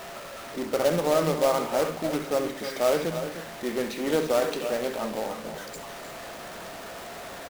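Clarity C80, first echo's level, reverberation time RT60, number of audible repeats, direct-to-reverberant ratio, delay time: no reverb, -13.0 dB, no reverb, 3, no reverb, 67 ms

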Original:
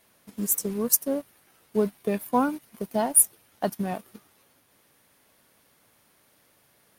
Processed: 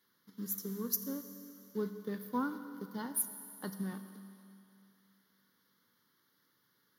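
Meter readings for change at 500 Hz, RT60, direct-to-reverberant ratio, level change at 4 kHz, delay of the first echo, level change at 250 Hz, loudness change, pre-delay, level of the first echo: -15.0 dB, 2.8 s, 8.5 dB, -9.0 dB, no echo, -9.5 dB, -13.5 dB, 6 ms, no echo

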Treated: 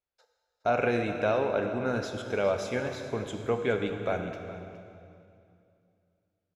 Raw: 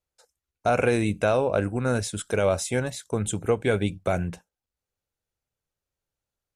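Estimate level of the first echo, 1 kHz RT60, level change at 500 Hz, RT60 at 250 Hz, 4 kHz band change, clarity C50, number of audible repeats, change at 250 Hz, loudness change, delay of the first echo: -15.0 dB, 2.3 s, -3.5 dB, 2.9 s, -5.0 dB, 6.0 dB, 1, -5.0 dB, -4.5 dB, 415 ms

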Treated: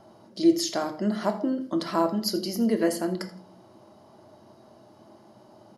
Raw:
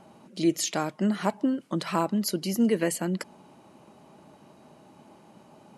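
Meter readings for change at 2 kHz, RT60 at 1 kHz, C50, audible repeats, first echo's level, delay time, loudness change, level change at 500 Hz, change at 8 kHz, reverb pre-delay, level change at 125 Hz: -2.5 dB, 0.45 s, 11.5 dB, 1, -16.5 dB, 82 ms, +1.0 dB, +2.5 dB, -3.0 dB, 3 ms, -3.5 dB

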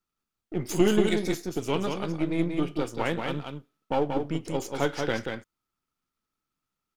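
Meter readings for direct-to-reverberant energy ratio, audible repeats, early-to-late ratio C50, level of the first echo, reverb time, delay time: no reverb, 1, no reverb, -5.0 dB, no reverb, 183 ms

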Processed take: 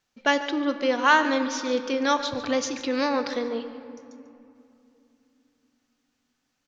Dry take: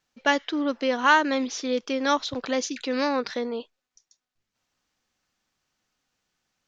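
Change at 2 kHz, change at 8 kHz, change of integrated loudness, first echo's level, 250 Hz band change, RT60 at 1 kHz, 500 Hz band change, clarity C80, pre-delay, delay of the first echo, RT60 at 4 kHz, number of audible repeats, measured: +0.5 dB, no reading, +0.5 dB, -14.5 dB, +0.5 dB, 2.7 s, +1.0 dB, 10.0 dB, 4 ms, 144 ms, 1.7 s, 1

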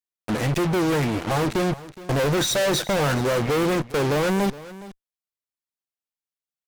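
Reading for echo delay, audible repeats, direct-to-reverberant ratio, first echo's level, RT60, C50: 417 ms, 1, no reverb, -17.5 dB, no reverb, no reverb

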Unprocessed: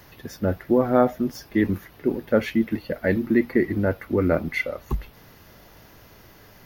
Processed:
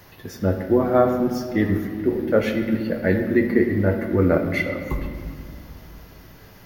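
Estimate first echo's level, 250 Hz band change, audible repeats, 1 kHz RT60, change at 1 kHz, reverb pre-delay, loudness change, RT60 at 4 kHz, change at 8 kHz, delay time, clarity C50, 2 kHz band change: no echo, +2.0 dB, no echo, 2.0 s, +1.5 dB, 6 ms, +2.5 dB, 1.4 s, no reading, no echo, 6.5 dB, +2.0 dB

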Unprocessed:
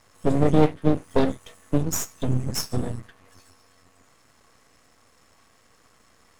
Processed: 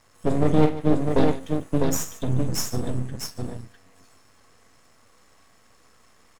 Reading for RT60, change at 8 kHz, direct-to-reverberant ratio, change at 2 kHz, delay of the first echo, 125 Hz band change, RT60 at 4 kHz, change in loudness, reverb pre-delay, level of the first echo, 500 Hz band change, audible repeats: no reverb, +0.5 dB, no reverb, +0.5 dB, 46 ms, +0.5 dB, no reverb, -0.5 dB, no reverb, -10.0 dB, +0.5 dB, 3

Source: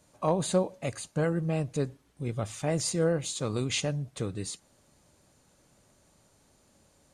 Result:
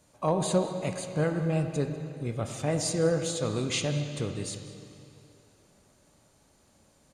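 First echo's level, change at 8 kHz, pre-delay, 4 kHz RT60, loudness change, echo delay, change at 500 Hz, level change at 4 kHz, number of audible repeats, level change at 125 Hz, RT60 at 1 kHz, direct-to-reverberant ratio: -19.5 dB, 0.0 dB, 7 ms, 2.5 s, +1.0 dB, 195 ms, +1.0 dB, +1.0 dB, 1, +1.5 dB, 2.7 s, 5.5 dB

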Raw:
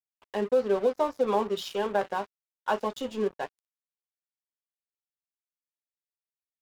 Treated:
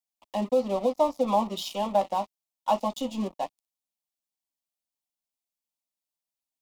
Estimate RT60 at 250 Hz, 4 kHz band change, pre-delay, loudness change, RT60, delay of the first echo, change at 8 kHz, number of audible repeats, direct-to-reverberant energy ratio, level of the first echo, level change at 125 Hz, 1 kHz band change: no reverb, +2.5 dB, no reverb, +1.0 dB, no reverb, no echo, +4.5 dB, no echo, no reverb, no echo, +4.0 dB, +3.5 dB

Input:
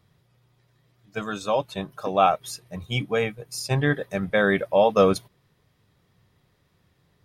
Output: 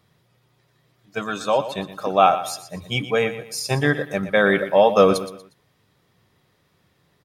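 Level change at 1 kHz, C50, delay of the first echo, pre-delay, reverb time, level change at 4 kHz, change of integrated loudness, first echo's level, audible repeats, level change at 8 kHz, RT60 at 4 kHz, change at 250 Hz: +4.0 dB, no reverb, 119 ms, no reverb, no reverb, +4.5 dB, +3.5 dB, -12.5 dB, 3, +4.5 dB, no reverb, +2.5 dB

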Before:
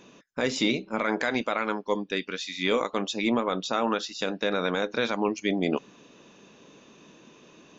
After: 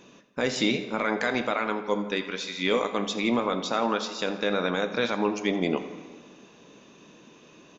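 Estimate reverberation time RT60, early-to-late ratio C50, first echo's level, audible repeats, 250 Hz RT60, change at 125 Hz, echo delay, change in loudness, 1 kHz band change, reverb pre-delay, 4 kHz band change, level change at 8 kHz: 1.8 s, 9.5 dB, -16.0 dB, 2, 1.8 s, +1.0 dB, 83 ms, +0.5 dB, +0.5 dB, 8 ms, +0.5 dB, no reading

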